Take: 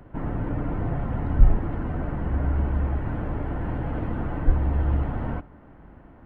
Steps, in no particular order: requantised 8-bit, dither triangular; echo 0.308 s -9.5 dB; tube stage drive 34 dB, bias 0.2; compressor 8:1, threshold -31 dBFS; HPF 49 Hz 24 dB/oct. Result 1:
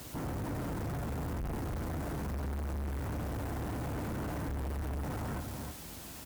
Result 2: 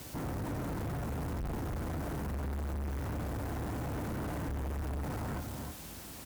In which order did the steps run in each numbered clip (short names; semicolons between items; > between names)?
HPF > requantised > echo > tube stage > compressor; echo > requantised > HPF > tube stage > compressor